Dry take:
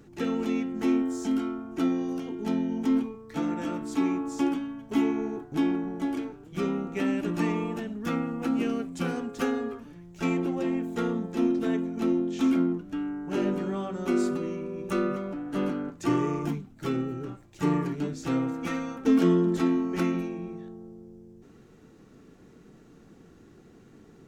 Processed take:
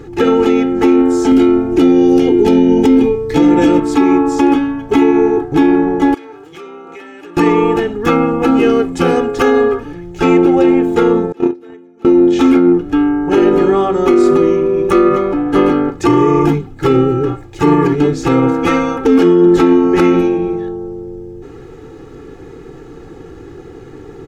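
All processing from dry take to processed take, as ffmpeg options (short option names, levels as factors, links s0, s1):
-filter_complex "[0:a]asettb=1/sr,asplit=3[s0][s1][s2];[s0]atrim=end=1.324[s3];[s1]atrim=start=1.32:end=3.8,asetpts=PTS-STARTPTS,afade=t=in:d=0.004:c=qsin,afade=t=out:st=2.476:d=0.004:c=qsin,equalizer=f=1200:t=o:w=1.1:g=-10.5,acontrast=58[s4];[s2]atrim=start=3.796[s5];[s3][s4]acrossfade=d=0.004:c1=hsin:c2=qsin[s6];[s6][s5]acrossfade=d=0.004:c1=qsin:c2=hsin,asettb=1/sr,asplit=3[s7][s8][s9];[s7]atrim=end=6.144[s10];[s8]atrim=start=6.14:end=7.37,asetpts=PTS-STARTPTS,afade=t=in:d=0.004:c=qsin,afade=t=out:st=1.226:d=0.004:c=qsin,highpass=f=960:p=1,acompressor=threshold=0.00355:ratio=12:attack=3.2:release=140:knee=1:detection=peak[s11];[s9]atrim=start=7.366[s12];[s10][s11]acrossfade=d=0.004:c1=hsin:c2=qsin[s13];[s13][s12]acrossfade=d=0.004:c1=qsin:c2=hsin,asettb=1/sr,asplit=3[s14][s15][s16];[s14]atrim=end=11.324[s17];[s15]atrim=start=11.32:end=12.05,asetpts=PTS-STARTPTS,afade=t=in:d=0.004:c=qsin,afade=t=out:st=0.726:d=0.004:c=qsin,highpass=f=210:p=1,agate=range=0.0447:threshold=0.0631:ratio=16:release=100:detection=peak[s18];[s16]atrim=start=12.046[s19];[s17][s18]acrossfade=d=0.004:c1=hsin:c2=qsin[s20];[s20][s19]acrossfade=d=0.004:c1=qsin:c2=hsin,highshelf=f=4200:g=-11,aecho=1:1:2.4:0.75,alimiter=level_in=10:limit=0.891:release=50:level=0:latency=1,volume=0.891"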